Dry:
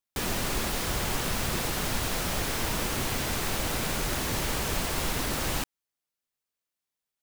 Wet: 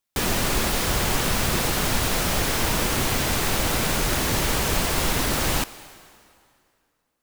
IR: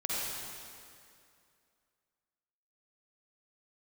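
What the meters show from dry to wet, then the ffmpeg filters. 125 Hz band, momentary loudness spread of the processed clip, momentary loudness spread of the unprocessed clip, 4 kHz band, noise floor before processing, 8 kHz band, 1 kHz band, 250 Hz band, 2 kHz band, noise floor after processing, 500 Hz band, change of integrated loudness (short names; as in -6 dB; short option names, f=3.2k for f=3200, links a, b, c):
+6.5 dB, 1 LU, 0 LU, +6.5 dB, under -85 dBFS, +6.5 dB, +6.5 dB, +6.5 dB, +6.5 dB, -75 dBFS, +6.5 dB, +6.5 dB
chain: -filter_complex "[0:a]asplit=2[a][b];[1:a]atrim=start_sample=2205,lowshelf=f=190:g=-11,adelay=91[c];[b][c]afir=irnorm=-1:irlink=0,volume=-22.5dB[d];[a][d]amix=inputs=2:normalize=0,volume=6.5dB"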